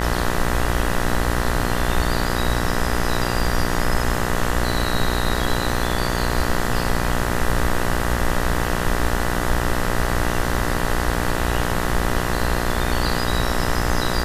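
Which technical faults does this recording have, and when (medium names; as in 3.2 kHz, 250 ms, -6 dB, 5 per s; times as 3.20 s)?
buzz 60 Hz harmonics 33 -24 dBFS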